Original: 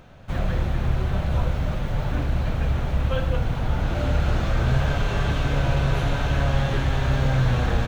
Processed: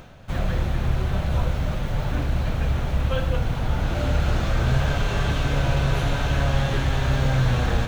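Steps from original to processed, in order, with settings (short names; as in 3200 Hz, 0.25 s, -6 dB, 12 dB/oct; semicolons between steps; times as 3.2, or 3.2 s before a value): high shelf 4000 Hz +5 dB; reverse; upward compressor, threshold -31 dBFS; reverse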